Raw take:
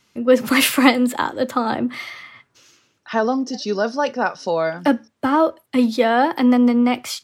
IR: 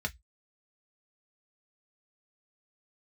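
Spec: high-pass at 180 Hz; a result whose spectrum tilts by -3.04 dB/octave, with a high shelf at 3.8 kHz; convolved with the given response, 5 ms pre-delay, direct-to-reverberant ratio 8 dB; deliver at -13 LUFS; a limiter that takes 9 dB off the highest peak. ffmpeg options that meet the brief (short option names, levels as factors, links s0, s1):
-filter_complex "[0:a]highpass=180,highshelf=f=3800:g=-8,alimiter=limit=0.282:level=0:latency=1,asplit=2[s0][s1];[1:a]atrim=start_sample=2205,adelay=5[s2];[s1][s2]afir=irnorm=-1:irlink=0,volume=0.251[s3];[s0][s3]amix=inputs=2:normalize=0,volume=2.24"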